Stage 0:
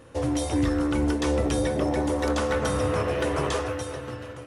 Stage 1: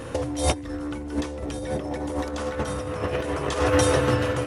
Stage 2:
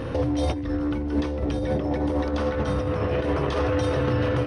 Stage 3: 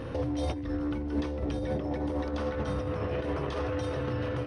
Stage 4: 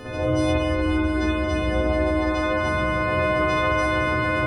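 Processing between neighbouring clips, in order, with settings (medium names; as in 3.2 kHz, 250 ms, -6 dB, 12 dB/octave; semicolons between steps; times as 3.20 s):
compressor with a negative ratio -31 dBFS, ratio -0.5; trim +7 dB
bass shelf 470 Hz +6.5 dB; peak limiter -16.5 dBFS, peak gain reduction 11 dB; Savitzky-Golay filter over 15 samples; trim +1 dB
gain riding; trim -7 dB
partials quantised in pitch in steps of 3 st; echo whose repeats swap between lows and highs 113 ms, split 810 Hz, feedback 87%, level -9.5 dB; spring tank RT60 1.8 s, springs 48/56 ms, chirp 50 ms, DRR -9.5 dB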